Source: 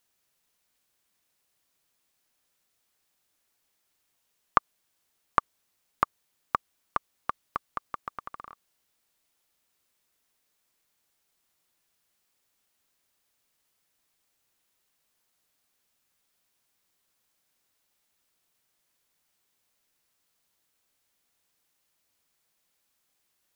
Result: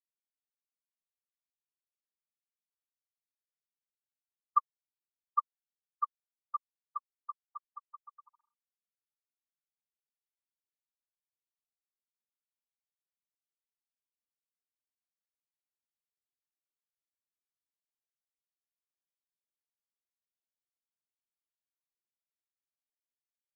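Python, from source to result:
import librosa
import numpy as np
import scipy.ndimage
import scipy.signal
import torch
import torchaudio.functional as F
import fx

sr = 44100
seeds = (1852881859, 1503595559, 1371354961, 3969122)

y = fx.sine_speech(x, sr)
y = fx.auto_wah(y, sr, base_hz=410.0, top_hz=1100.0, q=9.6, full_db=-36.0, direction='up')
y = fx.spectral_expand(y, sr, expansion=1.5)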